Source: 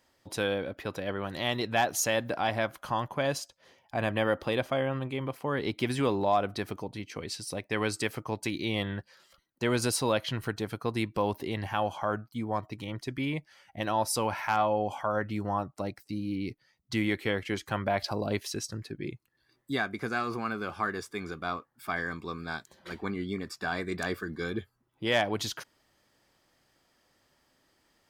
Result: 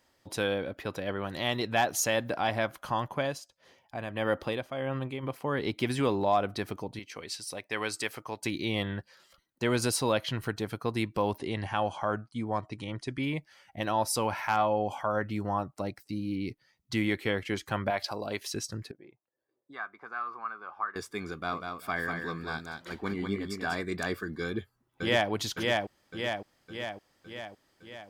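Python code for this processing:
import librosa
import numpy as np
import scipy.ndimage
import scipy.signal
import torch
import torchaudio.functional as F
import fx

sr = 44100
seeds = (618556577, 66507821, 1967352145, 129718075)

y = fx.tremolo(x, sr, hz=1.6, depth=0.62, at=(3.19, 5.22), fade=0.02)
y = fx.low_shelf(y, sr, hz=360.0, db=-11.5, at=(6.99, 8.43))
y = fx.brickwall_lowpass(y, sr, high_hz=11000.0, at=(11.38, 13.23))
y = fx.low_shelf(y, sr, hz=330.0, db=-11.0, at=(17.9, 18.41))
y = fx.auto_wah(y, sr, base_hz=470.0, top_hz=1200.0, q=3.1, full_db=-28.5, direction='up', at=(18.91, 20.96))
y = fx.echo_feedback(y, sr, ms=194, feedback_pct=16, wet_db=-5, at=(21.51, 23.81), fade=0.02)
y = fx.echo_throw(y, sr, start_s=24.44, length_s=0.86, ms=560, feedback_pct=60, wet_db=-2.0)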